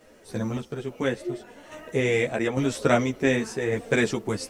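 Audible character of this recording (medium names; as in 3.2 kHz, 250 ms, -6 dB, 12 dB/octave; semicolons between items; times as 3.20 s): a quantiser's noise floor 12-bit, dither none; random-step tremolo; a shimmering, thickened sound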